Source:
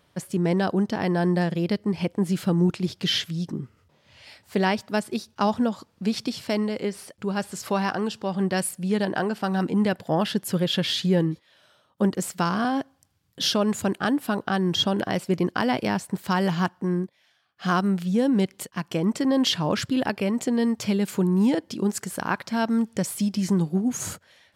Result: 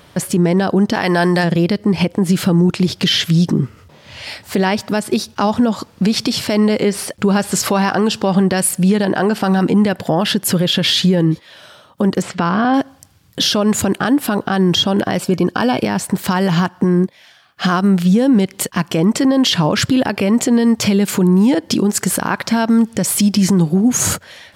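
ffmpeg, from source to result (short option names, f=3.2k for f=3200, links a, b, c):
-filter_complex "[0:a]asplit=3[a][b][c];[a]afade=t=out:st=0.93:d=0.02[d];[b]tiltshelf=f=630:g=-6.5,afade=t=in:st=0.93:d=0.02,afade=t=out:st=1.43:d=0.02[e];[c]afade=t=in:st=1.43:d=0.02[f];[d][e][f]amix=inputs=3:normalize=0,asettb=1/sr,asplit=3[g][h][i];[g]atrim=end=12.224[j];[h]atrim=start=12.22:end=12.74,asetpts=PTS-STARTPTS,afade=t=in:d=0.004:c=qsin,afade=t=out:st=0.516:d=0.004:c=qsin,lowpass=3.2k[k];[i]atrim=start=12.736[l];[j][k]acrossfade=d=0.004:c1=hsin:c2=qsin[m];[m][l]acrossfade=d=0.004:c1=qsin:c2=hsin,asettb=1/sr,asplit=3[n][o][p];[n]atrim=end=15.214[q];[o]atrim=start=15.21:end=15.82,asetpts=PTS-STARTPTS,afade=t=in:d=0.004:c=qsin,afade=t=out:st=0.606:d=0.004:c=qsin,asuperstop=centerf=2000:order=20:qfactor=6.4[r];[p]atrim=start=15.816[s];[q][r]acrossfade=d=0.004:c1=hsin:c2=qsin[t];[t][s]acrossfade=d=0.004:c1=qsin:c2=hsin,acompressor=threshold=-26dB:ratio=6,alimiter=level_in=23dB:limit=-1dB:release=50:level=0:latency=1,volume=-5dB"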